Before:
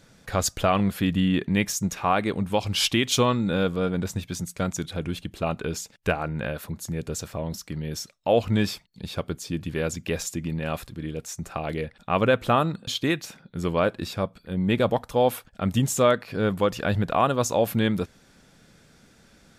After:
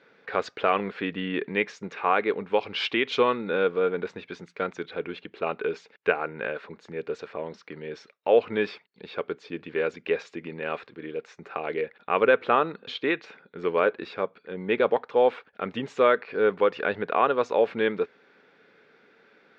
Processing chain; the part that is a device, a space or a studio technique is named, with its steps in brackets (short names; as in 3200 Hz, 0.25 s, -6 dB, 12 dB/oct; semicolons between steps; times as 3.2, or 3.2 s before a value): phone earpiece (speaker cabinet 380–3400 Hz, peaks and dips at 430 Hz +9 dB, 650 Hz -4 dB, 1500 Hz +3 dB, 2200 Hz +3 dB, 3200 Hz -4 dB)